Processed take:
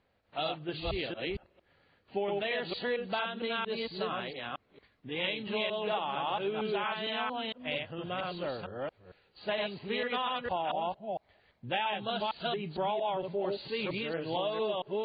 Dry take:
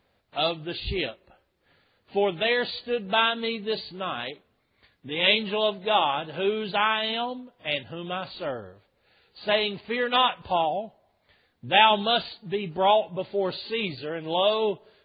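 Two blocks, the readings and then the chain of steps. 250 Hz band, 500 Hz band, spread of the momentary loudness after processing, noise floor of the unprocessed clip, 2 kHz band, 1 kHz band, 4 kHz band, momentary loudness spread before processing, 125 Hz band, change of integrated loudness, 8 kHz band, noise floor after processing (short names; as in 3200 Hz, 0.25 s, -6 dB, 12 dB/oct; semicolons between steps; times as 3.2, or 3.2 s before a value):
-5.0 dB, -6.5 dB, 8 LU, -70 dBFS, -8.5 dB, -8.5 dB, -10.0 dB, 12 LU, -4.5 dB, -8.5 dB, n/a, -72 dBFS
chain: reverse delay 0.228 s, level -1 dB; notch 3600 Hz, Q 21; compressor 6:1, threshold -24 dBFS, peak gain reduction 12.5 dB; air absorption 93 m; gain -4.5 dB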